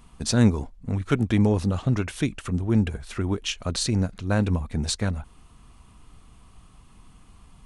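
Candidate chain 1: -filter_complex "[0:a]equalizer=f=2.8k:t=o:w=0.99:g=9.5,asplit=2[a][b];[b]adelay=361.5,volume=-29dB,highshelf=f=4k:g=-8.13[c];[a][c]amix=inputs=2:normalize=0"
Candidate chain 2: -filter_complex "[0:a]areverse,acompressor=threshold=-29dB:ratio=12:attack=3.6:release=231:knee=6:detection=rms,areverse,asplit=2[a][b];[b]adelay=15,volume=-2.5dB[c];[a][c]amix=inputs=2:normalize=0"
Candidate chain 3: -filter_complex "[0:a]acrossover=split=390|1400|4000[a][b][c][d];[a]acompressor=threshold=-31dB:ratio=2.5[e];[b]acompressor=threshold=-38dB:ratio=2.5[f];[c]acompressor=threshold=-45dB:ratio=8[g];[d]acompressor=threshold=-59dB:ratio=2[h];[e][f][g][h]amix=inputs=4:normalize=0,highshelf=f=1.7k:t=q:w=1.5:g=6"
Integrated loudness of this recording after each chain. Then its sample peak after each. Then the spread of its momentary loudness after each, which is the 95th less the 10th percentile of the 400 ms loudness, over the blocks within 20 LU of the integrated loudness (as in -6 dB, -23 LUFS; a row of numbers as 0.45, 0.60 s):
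-24.0, -35.0, -32.0 LUFS; -4.5, -20.5, -14.5 dBFS; 9, 19, 6 LU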